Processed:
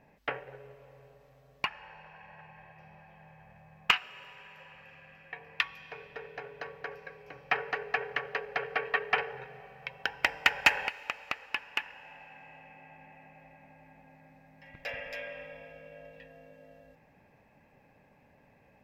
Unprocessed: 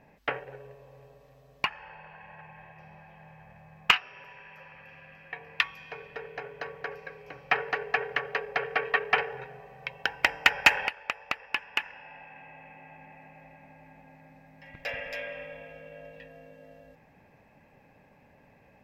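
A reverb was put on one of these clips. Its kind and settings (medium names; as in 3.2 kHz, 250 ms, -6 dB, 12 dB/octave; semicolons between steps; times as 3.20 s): plate-style reverb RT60 3.6 s, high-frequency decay 1×, DRR 20 dB; trim -3.5 dB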